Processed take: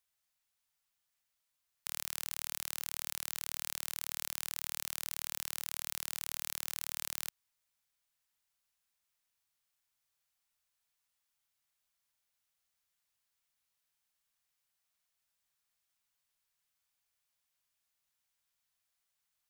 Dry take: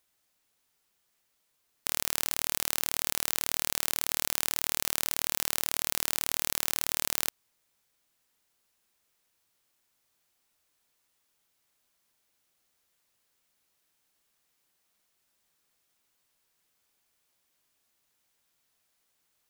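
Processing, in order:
parametric band 330 Hz −14 dB 1.4 octaves
level −8.5 dB

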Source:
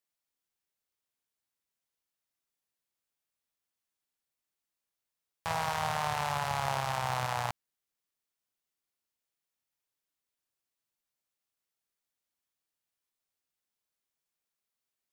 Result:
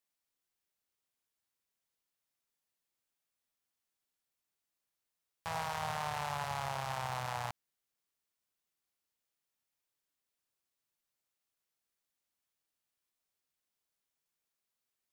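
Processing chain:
brickwall limiter −24 dBFS, peak gain reduction 8.5 dB

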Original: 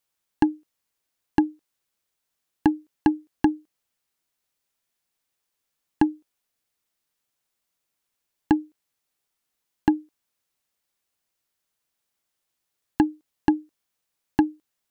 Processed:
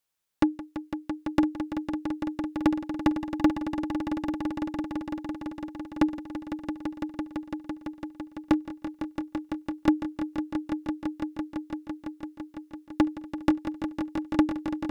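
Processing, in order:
wavefolder on the positive side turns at −12 dBFS
echo that builds up and dies away 168 ms, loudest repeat 5, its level −10 dB
level −2 dB

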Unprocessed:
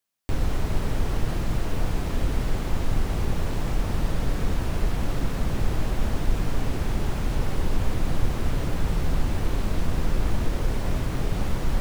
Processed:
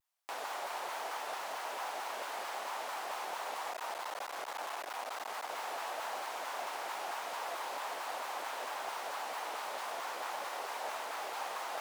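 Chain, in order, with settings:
0:03.69–0:05.52: hard clipping −20.5 dBFS, distortion −19 dB
four-pole ladder high-pass 670 Hz, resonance 45%
pitch modulation by a square or saw wave saw down 4.5 Hz, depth 250 cents
level +4.5 dB

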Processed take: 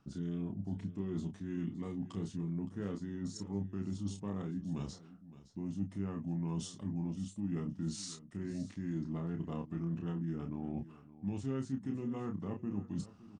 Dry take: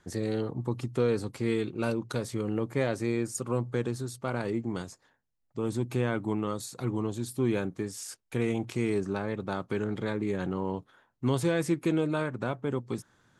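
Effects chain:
parametric band 240 Hz +14 dB 1.1 octaves
reversed playback
downward compressor 6 to 1, threshold −32 dBFS, peak gain reduction 18.5 dB
reversed playback
pitch shifter −4 semitones
double-tracking delay 30 ms −5.5 dB
single-tap delay 566 ms −16.5 dB
level −4.5 dB

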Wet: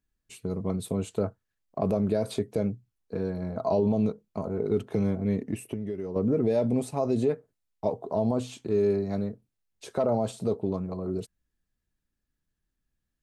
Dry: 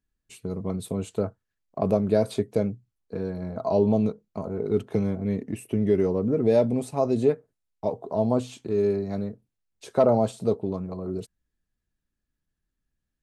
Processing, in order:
0:05.70–0:06.16: downward compressor 10 to 1, threshold −30 dBFS, peak gain reduction 14 dB
brickwall limiter −16 dBFS, peak gain reduction 7.5 dB

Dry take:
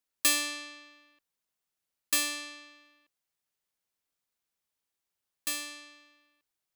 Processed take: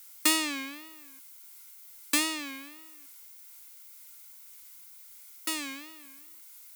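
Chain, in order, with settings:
background noise violet −50 dBFS
tape wow and flutter 140 cents
hollow resonant body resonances 260/960/1,400/2,100 Hz, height 13 dB, ringing for 25 ms

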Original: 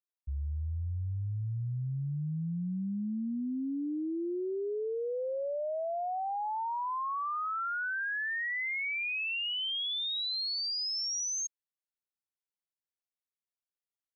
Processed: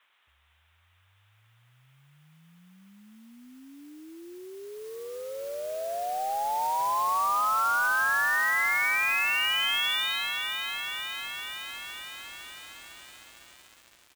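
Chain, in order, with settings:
in parallel at +2 dB: speech leveller within 4 dB 0.5 s
on the sum: bit-depth reduction 10 bits, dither triangular
flat-topped band-pass 2,300 Hz, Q 0.51
high-frequency loss of the air 150 metres
downsampling to 8,000 Hz
noise that follows the level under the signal 15 dB
feedback echo at a low word length 508 ms, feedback 80%, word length 8 bits, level −6 dB
level +2 dB

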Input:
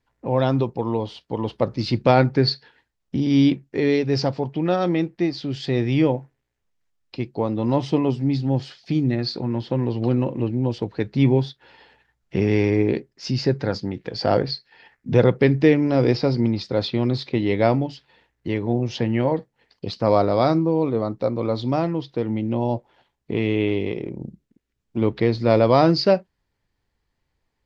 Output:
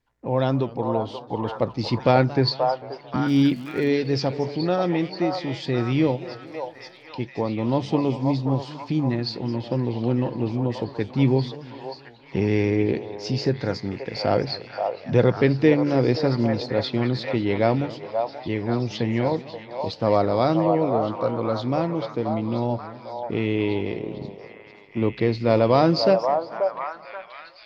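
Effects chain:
0:03.26–0:03.87: surface crackle 200 per second −34 dBFS
echo through a band-pass that steps 531 ms, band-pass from 780 Hz, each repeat 0.7 octaves, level −1.5 dB
feedback echo with a swinging delay time 223 ms, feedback 51%, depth 211 cents, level −18.5 dB
level −2 dB

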